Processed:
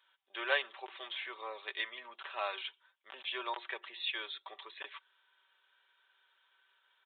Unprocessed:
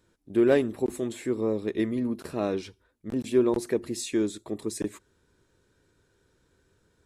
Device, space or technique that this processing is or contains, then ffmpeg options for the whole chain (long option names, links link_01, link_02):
musical greeting card: -af "highpass=250,aecho=1:1:5.2:0.5,aresample=8000,aresample=44100,highpass=frequency=870:width=0.5412,highpass=frequency=870:width=1.3066,equalizer=frequency=3200:width_type=o:width=0.51:gain=8,volume=1dB"